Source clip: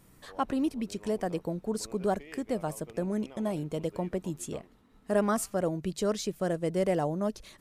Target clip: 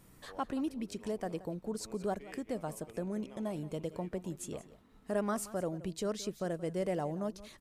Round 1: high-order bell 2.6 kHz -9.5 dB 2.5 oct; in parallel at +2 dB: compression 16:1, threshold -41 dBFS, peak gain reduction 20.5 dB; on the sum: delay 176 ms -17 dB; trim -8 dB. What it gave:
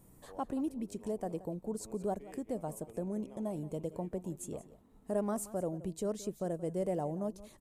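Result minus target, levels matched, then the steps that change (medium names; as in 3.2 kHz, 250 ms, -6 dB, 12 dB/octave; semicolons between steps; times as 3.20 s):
2 kHz band -9.0 dB
remove: high-order bell 2.6 kHz -9.5 dB 2.5 oct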